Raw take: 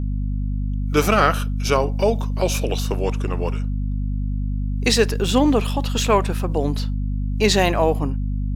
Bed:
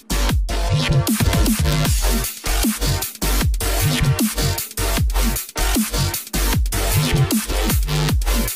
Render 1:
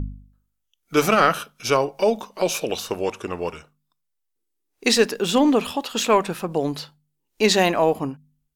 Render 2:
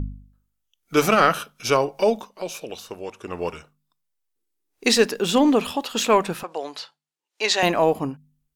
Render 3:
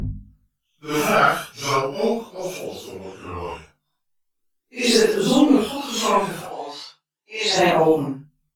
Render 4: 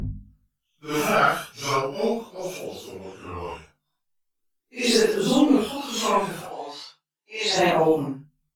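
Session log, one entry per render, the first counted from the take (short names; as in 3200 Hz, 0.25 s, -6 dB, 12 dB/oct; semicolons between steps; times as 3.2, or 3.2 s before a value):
de-hum 50 Hz, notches 5
2.11–3.42 dip -9 dB, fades 0.24 s; 6.43–7.63 BPF 670–7400 Hz
phase scrambler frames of 0.2 s; phaser 0.39 Hz, delay 1.4 ms, feedback 41%
gain -3 dB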